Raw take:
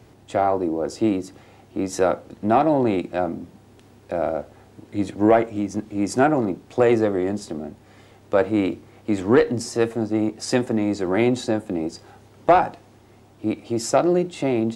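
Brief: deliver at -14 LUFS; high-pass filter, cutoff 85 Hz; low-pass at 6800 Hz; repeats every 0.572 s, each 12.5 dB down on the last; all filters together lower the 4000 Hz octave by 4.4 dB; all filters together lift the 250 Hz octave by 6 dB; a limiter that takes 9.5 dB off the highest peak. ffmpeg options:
-af "highpass=85,lowpass=6.8k,equalizer=f=250:t=o:g=8,equalizer=f=4k:t=o:g=-5,alimiter=limit=-10.5dB:level=0:latency=1,aecho=1:1:572|1144|1716:0.237|0.0569|0.0137,volume=7.5dB"

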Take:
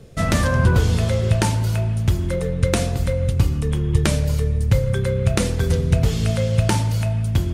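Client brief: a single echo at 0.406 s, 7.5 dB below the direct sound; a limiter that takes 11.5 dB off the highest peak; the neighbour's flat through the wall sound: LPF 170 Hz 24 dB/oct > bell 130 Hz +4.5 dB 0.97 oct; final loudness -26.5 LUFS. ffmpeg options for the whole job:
-af "alimiter=limit=-13dB:level=0:latency=1,lowpass=f=170:w=0.5412,lowpass=f=170:w=1.3066,equalizer=f=130:t=o:w=0.97:g=4.5,aecho=1:1:406:0.422,volume=-5.5dB"

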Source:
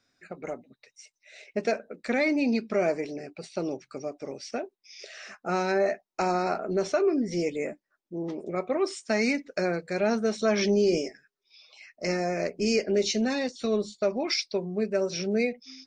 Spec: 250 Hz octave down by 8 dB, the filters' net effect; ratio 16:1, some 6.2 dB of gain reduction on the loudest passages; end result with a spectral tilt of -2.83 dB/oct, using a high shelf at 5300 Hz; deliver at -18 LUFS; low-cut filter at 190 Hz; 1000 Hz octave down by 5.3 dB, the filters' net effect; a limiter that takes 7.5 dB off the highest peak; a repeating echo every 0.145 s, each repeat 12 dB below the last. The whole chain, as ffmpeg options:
-af "highpass=190,equalizer=f=250:t=o:g=-8.5,equalizer=f=1k:t=o:g=-8,highshelf=f=5.3k:g=7.5,acompressor=threshold=-28dB:ratio=16,alimiter=level_in=1dB:limit=-24dB:level=0:latency=1,volume=-1dB,aecho=1:1:145|290|435:0.251|0.0628|0.0157,volume=18dB"

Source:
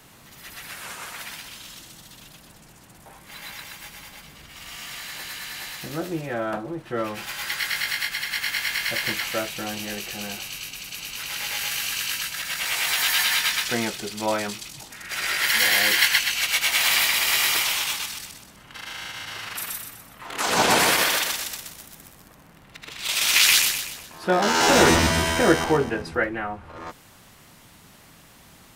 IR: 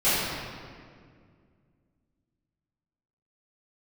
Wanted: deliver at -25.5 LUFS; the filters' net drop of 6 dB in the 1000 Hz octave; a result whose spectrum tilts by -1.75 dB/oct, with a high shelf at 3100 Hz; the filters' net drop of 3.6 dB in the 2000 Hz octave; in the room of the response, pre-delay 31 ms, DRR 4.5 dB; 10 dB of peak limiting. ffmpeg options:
-filter_complex "[0:a]equalizer=f=1k:t=o:g=-7.5,equalizer=f=2k:t=o:g=-5,highshelf=f=3.1k:g=6.5,alimiter=limit=-11.5dB:level=0:latency=1,asplit=2[a][b];[1:a]atrim=start_sample=2205,adelay=31[c];[b][c]afir=irnorm=-1:irlink=0,volume=-21.5dB[d];[a][d]amix=inputs=2:normalize=0,volume=-3.5dB"

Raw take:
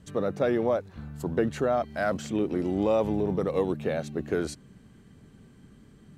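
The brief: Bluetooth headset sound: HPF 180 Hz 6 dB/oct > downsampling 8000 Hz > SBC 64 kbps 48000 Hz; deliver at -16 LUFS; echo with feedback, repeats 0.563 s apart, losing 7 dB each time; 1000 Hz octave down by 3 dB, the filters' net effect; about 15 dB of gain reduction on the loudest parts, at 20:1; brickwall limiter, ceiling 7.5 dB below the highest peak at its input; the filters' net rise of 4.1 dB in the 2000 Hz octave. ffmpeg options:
-af "equalizer=f=1k:t=o:g=-7,equalizer=f=2k:t=o:g=9,acompressor=threshold=-36dB:ratio=20,alimiter=level_in=8.5dB:limit=-24dB:level=0:latency=1,volume=-8.5dB,highpass=f=180:p=1,aecho=1:1:563|1126|1689|2252|2815:0.447|0.201|0.0905|0.0407|0.0183,aresample=8000,aresample=44100,volume=28.5dB" -ar 48000 -c:a sbc -b:a 64k

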